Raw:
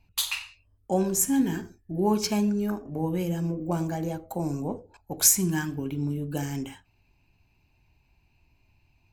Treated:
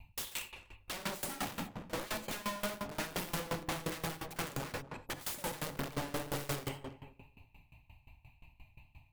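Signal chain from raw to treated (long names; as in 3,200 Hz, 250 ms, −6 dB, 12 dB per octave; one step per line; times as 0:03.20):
0:02.78–0:05.12: comb filter 2.4 ms, depth 33%
downward compressor 2.5 to 1, threshold −41 dBFS, peak gain reduction 17.5 dB
phaser with its sweep stopped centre 1,500 Hz, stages 6
wrap-around overflow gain 41 dB
tape wow and flutter 17 cents
feedback echo with a low-pass in the loop 245 ms, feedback 29%, low-pass 830 Hz, level −4 dB
reverb whose tail is shaped and stops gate 110 ms rising, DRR 4.5 dB
tremolo with a ramp in dB decaying 5.7 Hz, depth 20 dB
level +11 dB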